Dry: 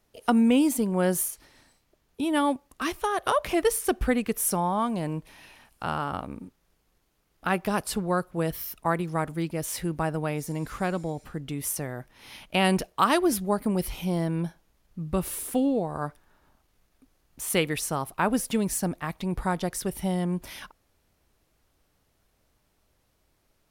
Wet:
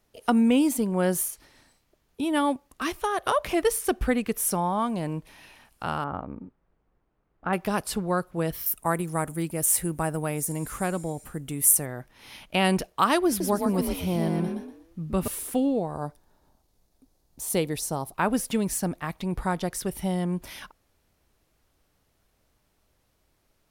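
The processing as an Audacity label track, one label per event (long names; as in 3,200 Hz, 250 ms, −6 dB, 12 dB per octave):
6.040000	7.530000	low-pass filter 1,400 Hz
8.660000	11.860000	high shelf with overshoot 6,500 Hz +10.5 dB, Q 1.5
13.280000	15.280000	echo with shifted repeats 120 ms, feedback 33%, per repeat +41 Hz, level −4 dB
15.950000	18.150000	flat-topped bell 1,900 Hz −8.5 dB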